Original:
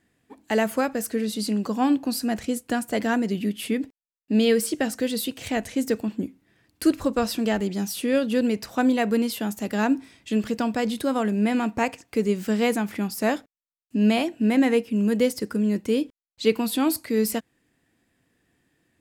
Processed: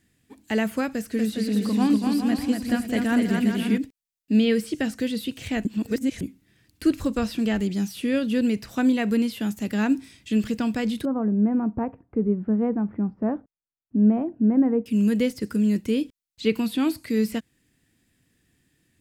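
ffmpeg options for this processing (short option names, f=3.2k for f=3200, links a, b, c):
-filter_complex "[0:a]asettb=1/sr,asplit=3[a][b][c];[a]atrim=end=0.914[d];[b]atrim=start=0.91:end=3.78,asetpts=PTS-STARTPTS,afade=t=in:d=0.004:c=qsin,afade=t=out:st=2.866:d=0.004:c=qsin,aecho=1:1:240|408|525.6|607.9|665.5:0.631|0.398|0.251|0.158|0.1,atrim=end_sample=126567[e];[c]atrim=start=3.776[f];[d][e]acrossfade=d=0.004:c1=hsin:c2=qsin[g];[g][f]acrossfade=d=0.004:c1=qsin:c2=hsin,asettb=1/sr,asplit=3[h][i][j];[h]atrim=end=11.054[k];[i]atrim=start=11.05:end=14.86,asetpts=PTS-STARTPTS,afade=t=in:d=0.004:c=qsin,afade=t=out:st=3.806:d=0.004:c=qsin,lowpass=f=1.1k:w=0.5412,lowpass=f=1.1k:w=1.3066[l];[j]atrim=start=14.856[m];[k][l]acrossfade=d=0.004:c1=hsin:c2=qsin[n];[n][m]acrossfade=d=0.004:c1=qsin:c2=hsin,asplit=3[o][p][q];[o]atrim=end=5.652[r];[p]atrim=start=5.648:end=6.212,asetpts=PTS-STARTPTS,areverse[s];[q]atrim=start=6.208[t];[r][s]acrossfade=d=0.004:c1=hsin:c2=hsin[u];[u][t]acrossfade=d=0.004:c1=hsin:c2=hsin,acrossover=split=3100[v][w];[w]acompressor=threshold=-48dB:ratio=4:attack=1:release=60[x];[v][x]amix=inputs=2:normalize=0,equalizer=f=760:t=o:w=2.7:g=-12.5,volume=6dB"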